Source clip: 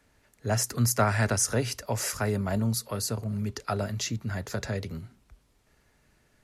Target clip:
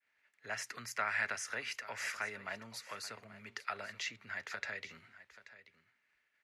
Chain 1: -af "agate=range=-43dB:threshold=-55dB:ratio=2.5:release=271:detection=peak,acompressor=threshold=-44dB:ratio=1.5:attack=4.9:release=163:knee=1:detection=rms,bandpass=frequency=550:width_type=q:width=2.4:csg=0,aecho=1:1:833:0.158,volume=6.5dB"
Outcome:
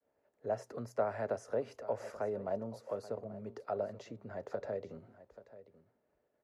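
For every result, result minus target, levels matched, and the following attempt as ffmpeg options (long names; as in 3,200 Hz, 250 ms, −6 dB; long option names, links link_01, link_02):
2,000 Hz band −16.5 dB; downward compressor: peak gain reduction +2.5 dB
-af "agate=range=-43dB:threshold=-55dB:ratio=2.5:release=271:detection=peak,acompressor=threshold=-44dB:ratio=1.5:attack=4.9:release=163:knee=1:detection=rms,bandpass=frequency=2100:width_type=q:width=2.4:csg=0,aecho=1:1:833:0.158,volume=6.5dB"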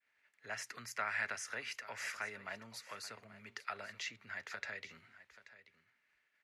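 downward compressor: peak gain reduction +2.5 dB
-af "agate=range=-43dB:threshold=-55dB:ratio=2.5:release=271:detection=peak,acompressor=threshold=-36dB:ratio=1.5:attack=4.9:release=163:knee=1:detection=rms,bandpass=frequency=2100:width_type=q:width=2.4:csg=0,aecho=1:1:833:0.158,volume=6.5dB"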